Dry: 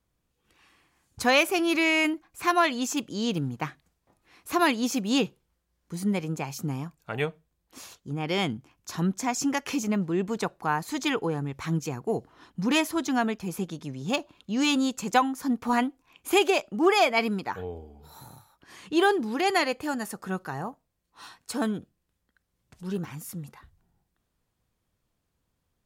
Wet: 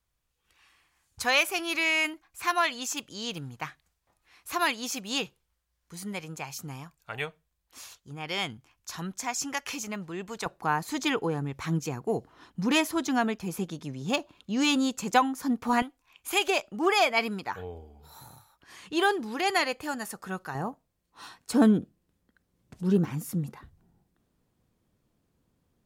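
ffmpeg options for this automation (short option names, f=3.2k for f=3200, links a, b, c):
-af "asetnsamples=n=441:p=0,asendcmd='10.46 equalizer g -1;15.82 equalizer g -12.5;16.48 equalizer g -5.5;20.55 equalizer g 2.5;21.53 equalizer g 9',equalizer=f=250:t=o:w=2.6:g=-12"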